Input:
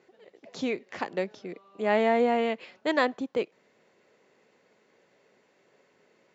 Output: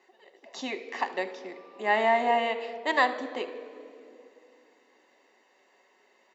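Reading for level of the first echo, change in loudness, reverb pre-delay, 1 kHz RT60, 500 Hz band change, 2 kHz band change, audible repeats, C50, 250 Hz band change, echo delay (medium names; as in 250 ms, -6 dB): -18.5 dB, 0.0 dB, 5 ms, 2.2 s, -2.5 dB, +4.0 dB, 1, 12.0 dB, -7.0 dB, 76 ms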